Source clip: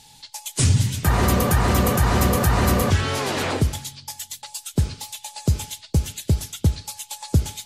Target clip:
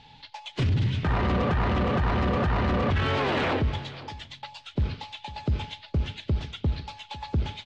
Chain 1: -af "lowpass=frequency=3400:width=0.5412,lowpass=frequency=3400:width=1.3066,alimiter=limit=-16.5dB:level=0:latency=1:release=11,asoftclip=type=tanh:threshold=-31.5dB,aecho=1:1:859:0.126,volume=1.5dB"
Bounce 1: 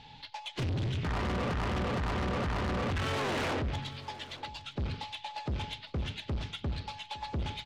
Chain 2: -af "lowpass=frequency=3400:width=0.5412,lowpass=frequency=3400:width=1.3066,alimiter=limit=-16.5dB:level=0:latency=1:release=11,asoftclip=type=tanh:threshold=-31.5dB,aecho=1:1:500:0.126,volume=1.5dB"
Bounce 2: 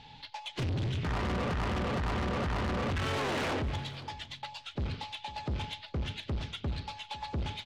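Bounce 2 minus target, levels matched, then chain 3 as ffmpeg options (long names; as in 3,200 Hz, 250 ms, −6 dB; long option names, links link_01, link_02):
soft clipping: distortion +11 dB
-af "lowpass=frequency=3400:width=0.5412,lowpass=frequency=3400:width=1.3066,alimiter=limit=-16.5dB:level=0:latency=1:release=11,asoftclip=type=tanh:threshold=-20dB,aecho=1:1:500:0.126,volume=1.5dB"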